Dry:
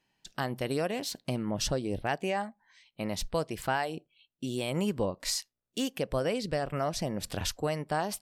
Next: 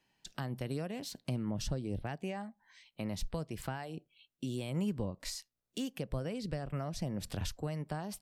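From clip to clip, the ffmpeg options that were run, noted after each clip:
-filter_complex "[0:a]acrossover=split=220[s0][s1];[s1]acompressor=threshold=0.00708:ratio=3[s2];[s0][s2]amix=inputs=2:normalize=0"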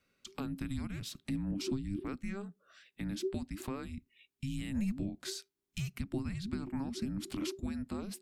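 -af "afreqshift=-400"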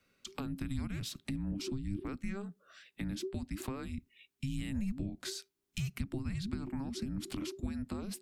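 -filter_complex "[0:a]acrossover=split=130[s0][s1];[s1]acompressor=threshold=0.01:ratio=6[s2];[s0][s2]amix=inputs=2:normalize=0,volume=1.41"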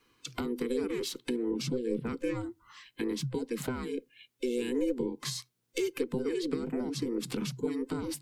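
-af "afftfilt=real='real(if(between(b,1,1008),(2*floor((b-1)/24)+1)*24-b,b),0)':imag='imag(if(between(b,1,1008),(2*floor((b-1)/24)+1)*24-b,b),0)*if(between(b,1,1008),-1,1)':win_size=2048:overlap=0.75,volume=1.78"

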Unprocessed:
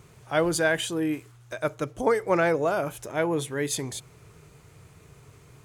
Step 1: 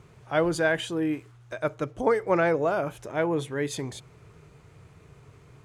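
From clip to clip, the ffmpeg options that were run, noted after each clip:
-af "aemphasis=mode=reproduction:type=50kf"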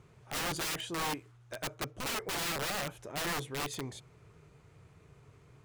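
-af "aeval=exprs='(mod(15*val(0)+1,2)-1)/15':c=same,volume=0.473"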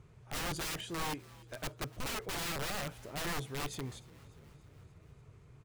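-filter_complex "[0:a]lowshelf=f=110:g=11,asplit=6[s0][s1][s2][s3][s4][s5];[s1]adelay=292,afreqshift=47,volume=0.075[s6];[s2]adelay=584,afreqshift=94,volume=0.0479[s7];[s3]adelay=876,afreqshift=141,volume=0.0305[s8];[s4]adelay=1168,afreqshift=188,volume=0.0197[s9];[s5]adelay=1460,afreqshift=235,volume=0.0126[s10];[s0][s6][s7][s8][s9][s10]amix=inputs=6:normalize=0,volume=0.668"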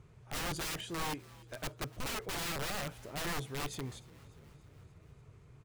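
-af anull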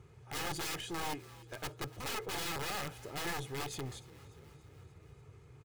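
-af "highpass=67,aeval=exprs='clip(val(0),-1,0.00708)':c=same,aecho=1:1:2.4:0.38,volume=1.19"

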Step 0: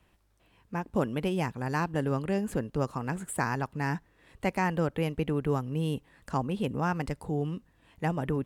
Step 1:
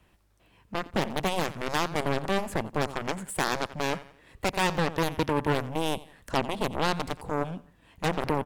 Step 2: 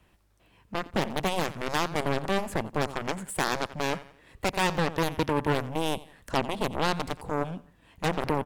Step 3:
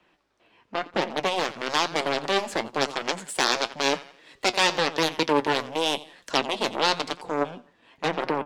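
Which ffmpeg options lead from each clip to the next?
-af "aeval=exprs='0.2*(cos(1*acos(clip(val(0)/0.2,-1,1)))-cos(1*PI/2))+0.0447*(cos(7*acos(clip(val(0)/0.2,-1,1)))-cos(7*PI/2))':c=same,aecho=1:1:88|176|264:0.0891|0.0348|0.0136,aeval=exprs='0.2*sin(PI/2*1.78*val(0)/0.2)':c=same,volume=0.891"
-af anull
-filter_complex "[0:a]flanger=delay=5.4:depth=3.8:regen=61:speed=0.97:shape=triangular,acrossover=split=230 5900:gain=0.1 1 0.0891[s0][s1][s2];[s0][s1][s2]amix=inputs=3:normalize=0,acrossover=split=3700[s3][s4];[s4]dynaudnorm=f=300:g=11:m=4.22[s5];[s3][s5]amix=inputs=2:normalize=0,volume=2.37"

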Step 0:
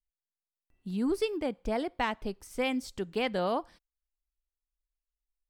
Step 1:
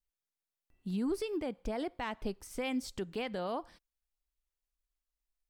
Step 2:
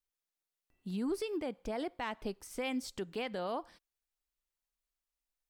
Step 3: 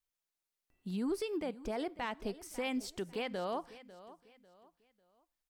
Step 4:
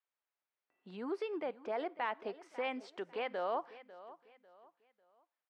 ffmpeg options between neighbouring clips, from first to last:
-af "alimiter=level_in=1.41:limit=0.0631:level=0:latency=1:release=101,volume=0.708"
-af "lowshelf=f=140:g=-8"
-af "aecho=1:1:547|1094|1641:0.141|0.048|0.0163"
-af "highpass=500,lowpass=2100,volume=1.5"

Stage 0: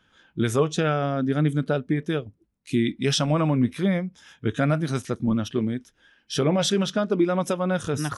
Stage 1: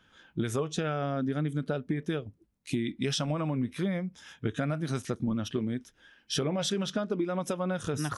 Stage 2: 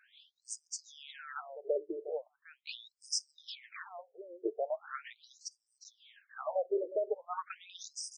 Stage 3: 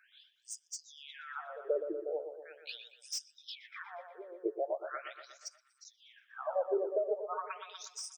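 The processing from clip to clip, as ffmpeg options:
-af "acompressor=threshold=0.0447:ratio=6"
-af "aecho=1:1:360:0.211,afftfilt=real='re*between(b*sr/1024,450*pow(6800/450,0.5+0.5*sin(2*PI*0.4*pts/sr))/1.41,450*pow(6800/450,0.5+0.5*sin(2*PI*0.4*pts/sr))*1.41)':imag='im*between(b*sr/1024,450*pow(6800/450,0.5+0.5*sin(2*PI*0.4*pts/sr))/1.41,450*pow(6800/450,0.5+0.5*sin(2*PI*0.4*pts/sr))*1.41)':win_size=1024:overlap=0.75,volume=1.26"
-filter_complex "[0:a]acrossover=split=310|3000[s0][s1][s2];[s1]aecho=1:1:120|240|360|480|600|720|840:0.447|0.246|0.135|0.0743|0.0409|0.0225|0.0124[s3];[s2]asoftclip=type=tanh:threshold=0.0211[s4];[s0][s3][s4]amix=inputs=3:normalize=0"

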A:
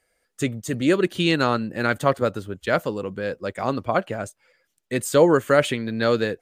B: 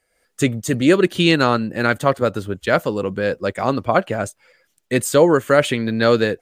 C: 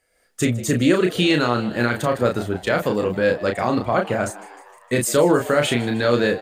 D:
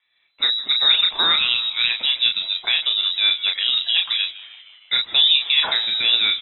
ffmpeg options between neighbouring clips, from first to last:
-af "dynaudnorm=f=100:g=3:m=2.24"
-filter_complex "[0:a]alimiter=limit=0.355:level=0:latency=1:release=33,asplit=2[s0][s1];[s1]adelay=33,volume=0.596[s2];[s0][s2]amix=inputs=2:normalize=0,asplit=7[s3][s4][s5][s6][s7][s8][s9];[s4]adelay=154,afreqshift=94,volume=0.119[s10];[s5]adelay=308,afreqshift=188,volume=0.075[s11];[s6]adelay=462,afreqshift=282,volume=0.0473[s12];[s7]adelay=616,afreqshift=376,volume=0.0299[s13];[s8]adelay=770,afreqshift=470,volume=0.0186[s14];[s9]adelay=924,afreqshift=564,volume=0.0117[s15];[s3][s10][s11][s12][s13][s14][s15]amix=inputs=7:normalize=0"
-af "lowpass=f=3400:t=q:w=0.5098,lowpass=f=3400:t=q:w=0.6013,lowpass=f=3400:t=q:w=0.9,lowpass=f=3400:t=q:w=2.563,afreqshift=-4000"

